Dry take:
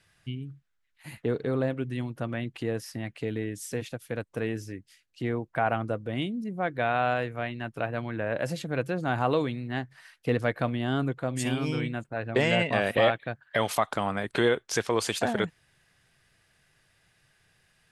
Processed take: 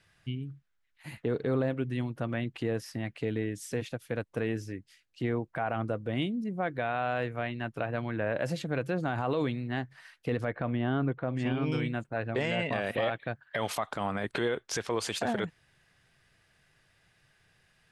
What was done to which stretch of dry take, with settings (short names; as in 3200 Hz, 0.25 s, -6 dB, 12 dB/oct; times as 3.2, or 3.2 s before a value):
10.45–11.72 LPF 2400 Hz
whole clip: high shelf 7500 Hz -7.5 dB; limiter -19.5 dBFS